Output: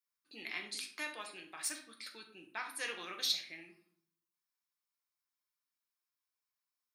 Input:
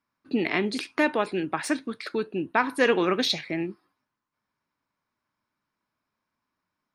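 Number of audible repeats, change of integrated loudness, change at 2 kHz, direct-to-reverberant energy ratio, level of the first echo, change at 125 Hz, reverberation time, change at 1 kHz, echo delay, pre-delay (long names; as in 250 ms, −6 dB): no echo audible, −13.5 dB, −14.0 dB, 2.0 dB, no echo audible, below −25 dB, 0.60 s, −19.0 dB, no echo audible, 6 ms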